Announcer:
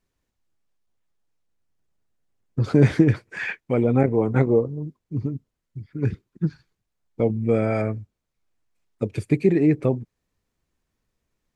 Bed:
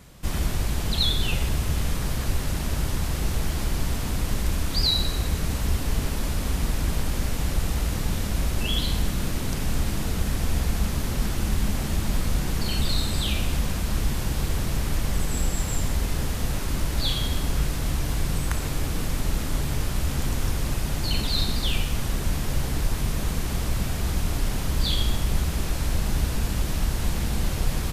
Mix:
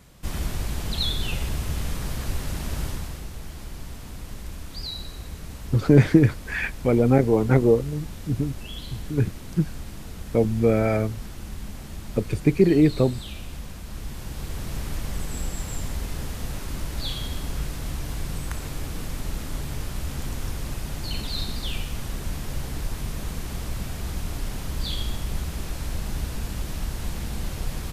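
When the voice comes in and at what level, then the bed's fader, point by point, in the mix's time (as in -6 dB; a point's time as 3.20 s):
3.15 s, +1.0 dB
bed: 2.86 s -3 dB
3.29 s -11.5 dB
13.84 s -11.5 dB
14.78 s -5 dB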